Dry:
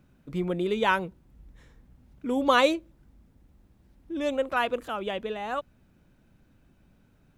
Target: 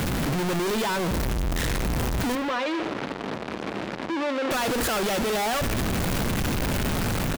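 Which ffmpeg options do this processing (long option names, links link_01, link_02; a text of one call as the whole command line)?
ffmpeg -i in.wav -filter_complex "[0:a]aeval=exprs='val(0)+0.5*0.0596*sgn(val(0))':channel_layout=same,dynaudnorm=framelen=250:gausssize=13:maxgain=11.5dB,alimiter=limit=-16dB:level=0:latency=1:release=238,asoftclip=type=hard:threshold=-29.5dB,asettb=1/sr,asplit=3[link_01][link_02][link_03];[link_01]atrim=end=2.354[link_04];[link_02]atrim=start=2.35:end=4.51,asetpts=PTS-STARTPTS,afade=type=in:duration=0.004:curve=qsin,afade=type=out:start_time=2.156:duration=0.004:curve=qsin,highpass=260,lowpass=3300[link_05];[link_03]atrim=start=4.506[link_06];[link_04][link_05]acrossfade=duration=0.004:curve1=hsin:curve2=qsin[link_07];[link_07][link_06]acrossfade=duration=0.004:curve1=qsin:curve2=hsin,aecho=1:1:75|150|225|300|375:0.141|0.0805|0.0459|0.0262|0.0149,volume=4.5dB" out.wav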